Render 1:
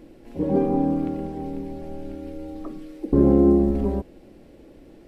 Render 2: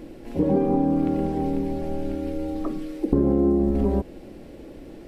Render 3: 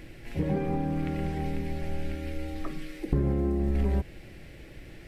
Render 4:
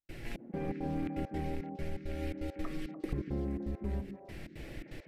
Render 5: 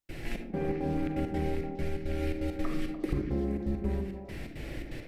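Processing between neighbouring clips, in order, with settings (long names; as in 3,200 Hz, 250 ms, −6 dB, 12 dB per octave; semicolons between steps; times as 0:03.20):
downward compressor 5 to 1, threshold −24 dBFS, peak gain reduction 11.5 dB; level +6.5 dB
octave-band graphic EQ 125/250/500/1,000/2,000 Hz +6/−12/−7/−7/+9 dB
downward compressor, threshold −34 dBFS, peak gain reduction 13.5 dB; gate pattern ".xxx..xx.xxx.x" 168 BPM −60 dB; echo through a band-pass that steps 147 ms, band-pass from 250 Hz, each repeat 1.4 octaves, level −1 dB; level +1.5 dB
convolution reverb RT60 0.55 s, pre-delay 36 ms, DRR 6 dB; level +4.5 dB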